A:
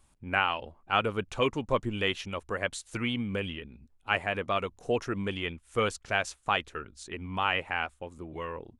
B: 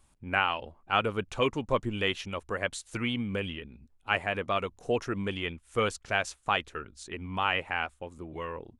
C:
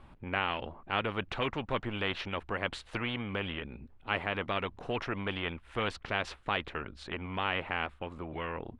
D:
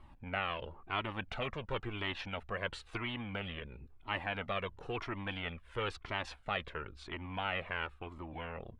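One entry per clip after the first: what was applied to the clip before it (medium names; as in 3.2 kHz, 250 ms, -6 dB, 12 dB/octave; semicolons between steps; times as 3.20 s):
no audible change
distance through air 420 m; spectrum-flattening compressor 2:1; trim -1 dB
Shepard-style flanger falling 0.98 Hz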